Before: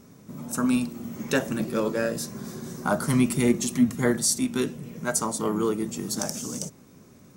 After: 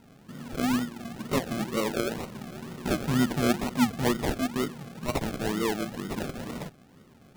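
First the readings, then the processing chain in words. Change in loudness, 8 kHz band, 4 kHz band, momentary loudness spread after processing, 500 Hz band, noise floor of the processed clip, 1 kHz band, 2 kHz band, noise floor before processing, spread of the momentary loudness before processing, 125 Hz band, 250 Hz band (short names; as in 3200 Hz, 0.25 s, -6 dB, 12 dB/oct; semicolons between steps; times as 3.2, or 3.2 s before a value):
-3.5 dB, -11.5 dB, -1.0 dB, 13 LU, -3.0 dB, -55 dBFS, 0.0 dB, -2.0 dB, -52 dBFS, 12 LU, -2.0 dB, -3.5 dB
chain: decimation with a swept rate 37×, swing 60% 2.1 Hz; gain -3 dB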